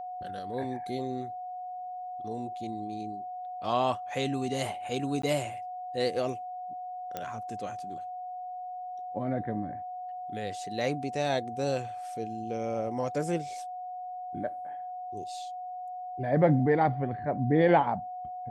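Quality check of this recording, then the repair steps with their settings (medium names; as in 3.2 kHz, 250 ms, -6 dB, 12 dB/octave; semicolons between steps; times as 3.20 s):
whine 730 Hz -36 dBFS
5.22–5.23 s: dropout 14 ms
7.17 s: pop -20 dBFS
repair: de-click; band-stop 730 Hz, Q 30; interpolate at 5.22 s, 14 ms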